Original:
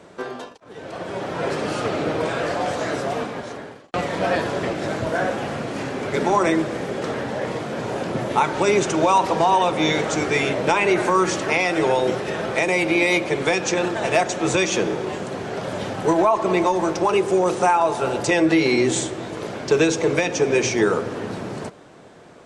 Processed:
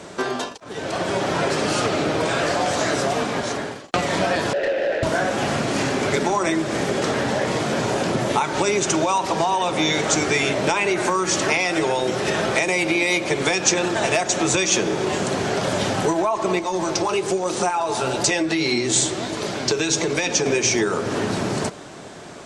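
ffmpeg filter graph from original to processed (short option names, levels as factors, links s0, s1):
-filter_complex "[0:a]asettb=1/sr,asplit=3[s0][s1][s2];[s0]atrim=end=4.534[s3];[s1]atrim=start=4.53:end=5.03,asetpts=PTS-STARTPTS,afade=t=in:d=0.004:c=qsin,afade=t=out:st=0.496:d=0.004:c=qsin,asplit=3[s4][s5][s6];[s4]bandpass=f=530:t=q:w=8,volume=1[s7];[s5]bandpass=f=1840:t=q:w=8,volume=0.501[s8];[s6]bandpass=f=2480:t=q:w=8,volume=0.355[s9];[s7][s8][s9]amix=inputs=3:normalize=0,asplit=2[s10][s11];[s11]highpass=f=720:p=1,volume=14.1,asoftclip=type=tanh:threshold=0.126[s12];[s10][s12]amix=inputs=2:normalize=0,lowpass=f=1300:p=1,volume=0.501[s13];[s2]atrim=start=5.026[s14];[s3][s13]acrossfade=d=0.004:c1=hsin:c2=qsin[s15];[s15][s14]acrossfade=d=0.004:c1=qsin:c2=hsin,asettb=1/sr,asplit=3[s16][s17][s18];[s16]atrim=end=16.594[s19];[s17]atrim=start=16.59:end=20.46,asetpts=PTS-STARTPTS,afade=t=in:d=0.004:c=qsin,afade=t=out:st=3.866:d=0.004:c=qsin,acompressor=threshold=0.0708:ratio=1.5:attack=3.2:release=140:knee=1:detection=peak,equalizer=f=4300:t=o:w=0.68:g=3.5,flanger=delay=3.1:depth=6.5:regen=60:speed=1.1:shape=triangular[s20];[s18]atrim=start=20.456[s21];[s19][s20]acrossfade=d=0.004:c1=hsin:c2=qsin[s22];[s22][s21]acrossfade=d=0.004:c1=qsin:c2=hsin,bandreject=f=490:w=12,acompressor=threshold=0.0501:ratio=6,equalizer=f=6700:t=o:w=1.9:g=7.5,volume=2.37"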